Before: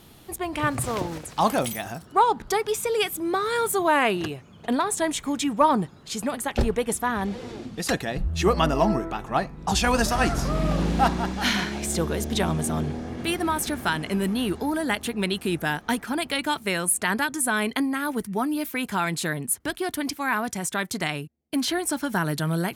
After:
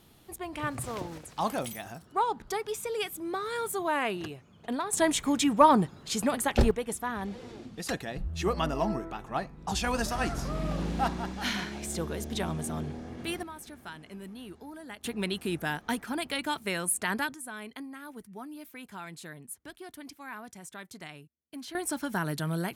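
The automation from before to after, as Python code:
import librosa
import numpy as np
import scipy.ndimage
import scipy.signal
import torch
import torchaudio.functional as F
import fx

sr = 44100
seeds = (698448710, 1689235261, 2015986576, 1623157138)

y = fx.gain(x, sr, db=fx.steps((0.0, -8.5), (4.93, 0.0), (6.71, -8.0), (13.43, -18.5), (15.04, -6.0), (17.34, -17.0), (21.75, -6.0)))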